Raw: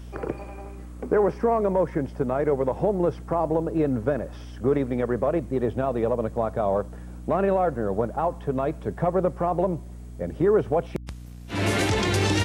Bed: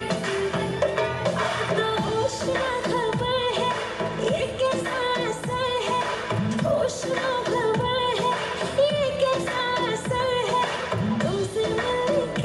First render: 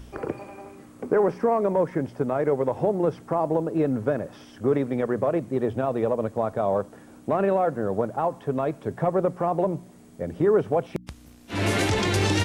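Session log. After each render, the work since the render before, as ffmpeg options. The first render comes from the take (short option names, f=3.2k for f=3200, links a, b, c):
-af "bandreject=f=60:t=h:w=4,bandreject=f=120:t=h:w=4,bandreject=f=180:t=h:w=4"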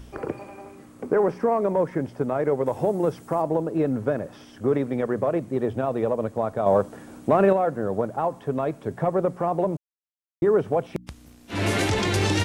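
-filter_complex "[0:a]asettb=1/sr,asplit=3[a][b][c];[a]atrim=end=2.664[d];[b]atrim=start=2.66:end=3.42,asetpts=PTS-STARTPTS,afade=t=in:d=0.004:c=qsin,afade=t=out:st=0.756:d=0.004:c=qsin,highshelf=f=6.3k:g=11.5[e];[c]atrim=start=3.416[f];[d][e]acrossfade=d=0.004:c1=hsin:c2=qsin[g];[g][f]acrossfade=d=0.004:c1=qsin:c2=hsin,asettb=1/sr,asplit=3[h][i][j];[h]atrim=end=6.664[k];[i]atrim=start=6.66:end=7.53,asetpts=PTS-STARTPTS,afade=t=in:d=0.004:c=qsin,afade=t=out:st=0.866:d=0.004:c=qsin,acontrast=26[l];[j]atrim=start=7.526[m];[k][l]acrossfade=d=0.004:c1=hsin:c2=qsin[n];[n][m]acrossfade=d=0.004:c1=qsin:c2=hsin,asplit=3[o][p][q];[o]atrim=end=9.77,asetpts=PTS-STARTPTS,afade=t=out:st=9.766:d=0.004:c=hsin[r];[p]atrim=start=9.77:end=10.42,asetpts=PTS-STARTPTS,volume=0[s];[q]atrim=start=10.42,asetpts=PTS-STARTPTS,afade=t=in:d=0.004:c=hsin[t];[r][s][t]concat=n=3:v=0:a=1"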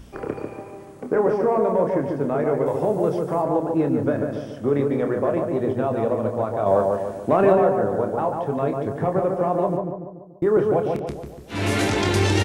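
-filter_complex "[0:a]asplit=2[a][b];[b]adelay=28,volume=-7.5dB[c];[a][c]amix=inputs=2:normalize=0,asplit=2[d][e];[e]adelay=144,lowpass=f=1.5k:p=1,volume=-3dB,asplit=2[f][g];[g]adelay=144,lowpass=f=1.5k:p=1,volume=0.53,asplit=2[h][i];[i]adelay=144,lowpass=f=1.5k:p=1,volume=0.53,asplit=2[j][k];[k]adelay=144,lowpass=f=1.5k:p=1,volume=0.53,asplit=2[l][m];[m]adelay=144,lowpass=f=1.5k:p=1,volume=0.53,asplit=2[n][o];[o]adelay=144,lowpass=f=1.5k:p=1,volume=0.53,asplit=2[p][q];[q]adelay=144,lowpass=f=1.5k:p=1,volume=0.53[r];[d][f][h][j][l][n][p][r]amix=inputs=8:normalize=0"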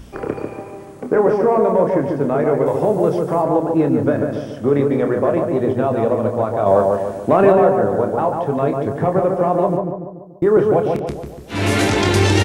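-af "volume=5dB,alimiter=limit=-2dB:level=0:latency=1"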